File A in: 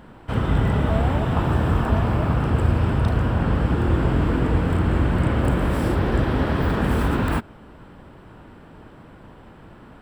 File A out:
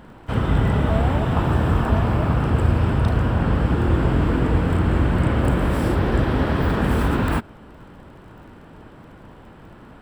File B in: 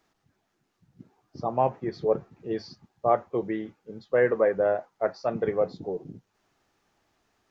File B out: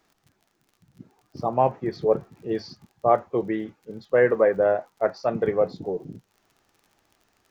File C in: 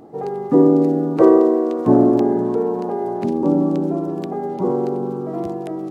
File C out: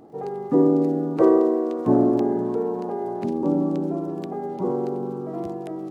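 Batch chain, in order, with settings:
surface crackle 44 per second −48 dBFS
normalise the peak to −6 dBFS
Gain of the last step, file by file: +1.0, +3.5, −5.0 decibels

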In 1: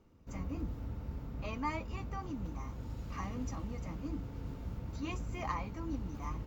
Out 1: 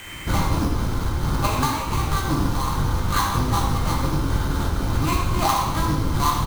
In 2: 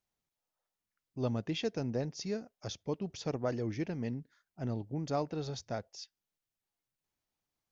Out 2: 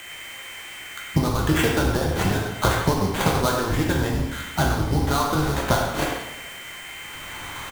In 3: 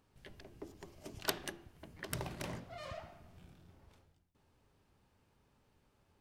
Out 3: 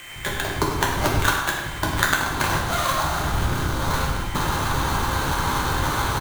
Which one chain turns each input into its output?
sub-octave generator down 1 octave, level +2 dB
camcorder AGC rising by 16 dB per second
flat-topped bell 1,200 Hz +12 dB 1.2 octaves
steady tone 3,100 Hz −48 dBFS
high-shelf EQ 9,500 Hz −8.5 dB
downward compressor 12 to 1, threshold −36 dBFS
harmonic and percussive parts rebalanced percussive +9 dB
sample-rate reduction 5,200 Hz, jitter 20%
far-end echo of a speakerphone 100 ms, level −7 dB
coupled-rooms reverb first 0.75 s, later 2.5 s, DRR −2 dB
loudness normalisation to −23 LKFS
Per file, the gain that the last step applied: +9.5, +9.0, +8.5 decibels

